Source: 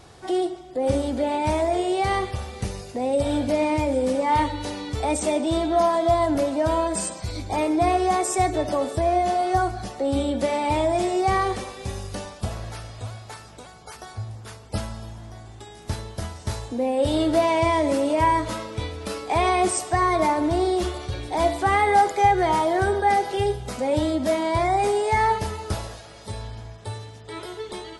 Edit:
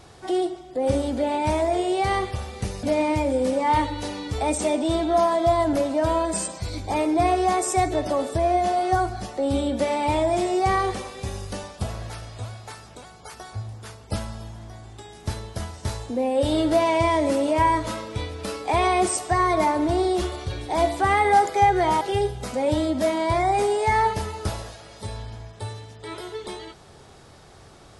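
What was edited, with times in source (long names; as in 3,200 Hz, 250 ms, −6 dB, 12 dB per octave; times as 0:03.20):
0:02.83–0:03.45: remove
0:22.63–0:23.26: remove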